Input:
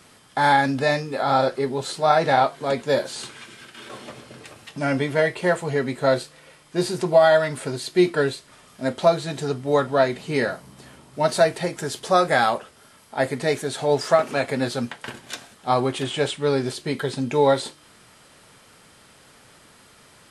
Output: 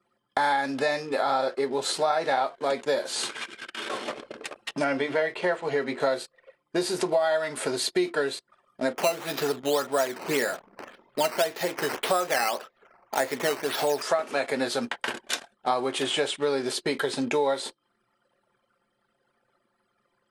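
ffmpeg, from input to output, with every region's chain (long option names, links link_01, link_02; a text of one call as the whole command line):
ffmpeg -i in.wav -filter_complex "[0:a]asettb=1/sr,asplit=3[link_01][link_02][link_03];[link_01]atrim=end=4.844[link_04];[link_02]atrim=start=4.84:end=6,asetpts=PTS-STARTPTS,afade=type=in:duration=0.004:curve=qsin,afade=type=out:start_time=1.156:duration=0.004:curve=qsin,acrossover=split=5100[link_05][link_06];[link_06]acompressor=threshold=-57dB:ratio=4:attack=1:release=60[link_07];[link_05][link_07]amix=inputs=2:normalize=0,bandreject=frequency=50:width_type=h:width=6,bandreject=frequency=100:width_type=h:width=6,bandreject=frequency=150:width_type=h:width=6,bandreject=frequency=200:width_type=h:width=6,bandreject=frequency=250:width_type=h:width=6,bandreject=frequency=300:width_type=h:width=6,bandreject=frequency=350:width_type=h:width=6,bandreject=frequency=400:width_type=h:width=6[link_08];[link_03]atrim=start=5.996[link_09];[link_04][link_08]acrossfade=duration=0.004:curve1=hsin:curve2=qsin[link_10];[link_10][link_09]acrossfade=duration=0.004:curve1=qsin:curve2=hsin,asettb=1/sr,asplit=3[link_11][link_12][link_13];[link_11]atrim=end=8.954[link_14];[link_12]atrim=start=8.95:end=14.02,asetpts=PTS-STARTPTS,afade=type=in:duration=0.004:curve=qsin,afade=type=out:start_time=5.066:duration=0.004:curve=qsin,acrossover=split=3200[link_15][link_16];[link_16]acompressor=threshold=-39dB:ratio=4:attack=1:release=60[link_17];[link_15][link_17]amix=inputs=2:normalize=0,highshelf=frequency=3300:gain=7.5,acrusher=samples=9:mix=1:aa=0.000001:lfo=1:lforange=9:lforate=1.8[link_18];[link_13]atrim=start=14.016[link_19];[link_14][link_18]acrossfade=duration=0.004:curve1=hsin:curve2=qsin[link_20];[link_20][link_19]acrossfade=duration=0.004:curve1=qsin:curve2=hsin,highpass=320,anlmdn=0.158,acompressor=threshold=-32dB:ratio=4,volume=7.5dB" out.wav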